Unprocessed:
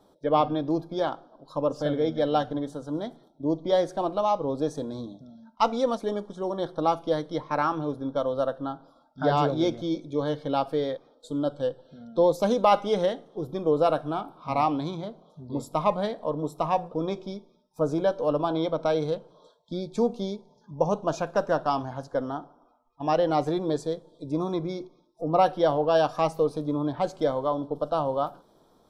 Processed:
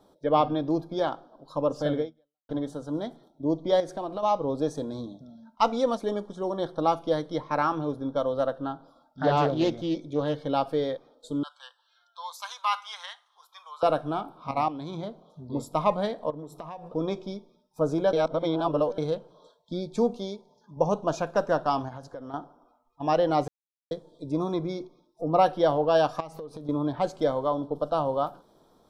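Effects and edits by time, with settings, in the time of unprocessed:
2.00–2.49 s: fade out exponential
3.80–4.23 s: compression 3:1, threshold -30 dBFS
8.38–10.34 s: loudspeaker Doppler distortion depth 0.19 ms
11.43–13.83 s: elliptic high-pass 1 kHz, stop band 70 dB
14.51–14.97 s: level held to a coarse grid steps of 12 dB
16.30–16.88 s: compression 12:1, threshold -35 dBFS
18.13–18.98 s: reverse
20.17–20.77 s: bass shelf 210 Hz -9.5 dB
21.88–22.34 s: compression 10:1, threshold -35 dBFS
23.48–23.91 s: mute
26.20–26.69 s: compression 12:1, threshold -35 dBFS

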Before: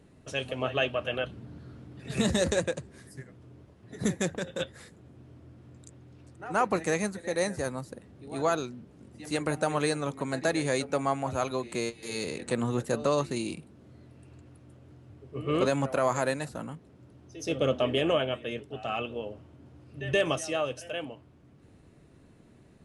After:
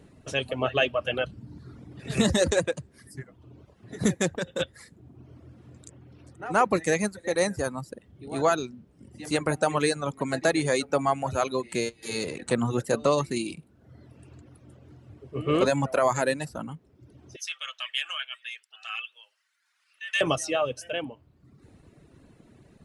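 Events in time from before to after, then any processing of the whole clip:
17.36–20.21 s: high-pass 1.5 kHz 24 dB/octave
whole clip: reverb removal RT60 0.93 s; trim +4.5 dB

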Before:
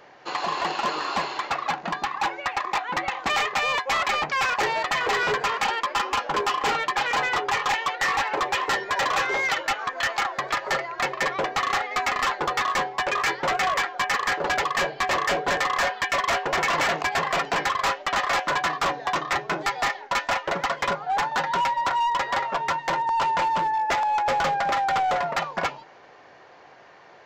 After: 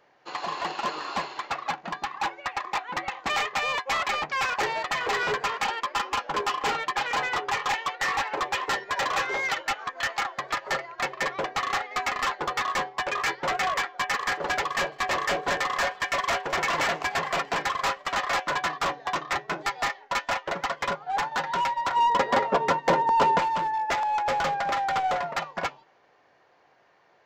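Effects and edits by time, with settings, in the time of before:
13.91–18.23 s: feedback delay 215 ms, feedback 46%, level -18 dB
21.96–23.39 s: small resonant body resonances 240/430 Hz, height 14 dB, ringing for 25 ms
whole clip: de-hum 383.6 Hz, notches 9; upward expansion 1.5:1, over -41 dBFS

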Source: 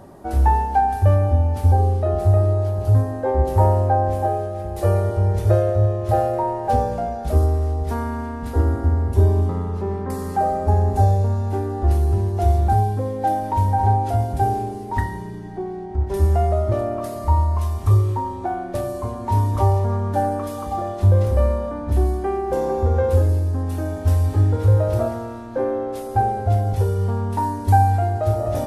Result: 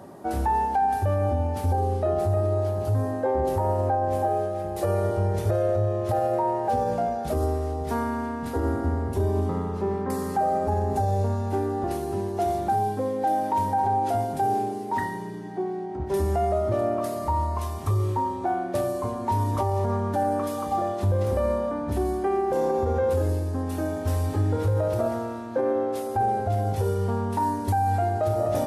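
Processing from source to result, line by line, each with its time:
11.84–16.00 s: high-pass 150 Hz
whole clip: high-pass 130 Hz 12 dB/octave; peak limiter -16 dBFS

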